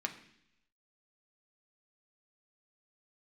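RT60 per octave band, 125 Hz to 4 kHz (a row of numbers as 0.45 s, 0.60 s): 0.90 s, 0.90 s, 0.75 s, 0.70 s, 0.95 s, 0.90 s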